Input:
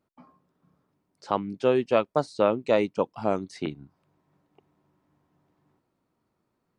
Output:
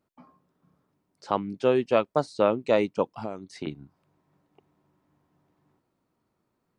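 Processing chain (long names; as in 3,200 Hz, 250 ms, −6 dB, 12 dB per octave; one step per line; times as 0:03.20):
0:03.18–0:03.67: downward compressor 6 to 1, threshold −31 dBFS, peak gain reduction 11.5 dB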